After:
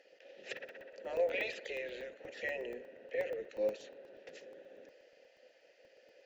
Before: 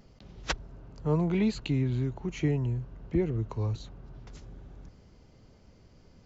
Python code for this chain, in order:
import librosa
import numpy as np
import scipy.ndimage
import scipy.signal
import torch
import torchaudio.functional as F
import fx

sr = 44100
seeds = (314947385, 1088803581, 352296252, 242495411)

y = fx.high_shelf(x, sr, hz=4200.0, db=9.0)
y = fx.echo_wet_bandpass(y, sr, ms=63, feedback_pct=72, hz=1100.0, wet_db=-16.0)
y = fx.dynamic_eq(y, sr, hz=6100.0, q=1.3, threshold_db=-54.0, ratio=4.0, max_db=4)
y = fx.spec_gate(y, sr, threshold_db=-15, keep='weak')
y = fx.vowel_filter(y, sr, vowel='e')
y = fx.buffer_crackle(y, sr, first_s=0.57, period_s=0.12, block=64, kind='zero')
y = y * librosa.db_to_amplitude(14.0)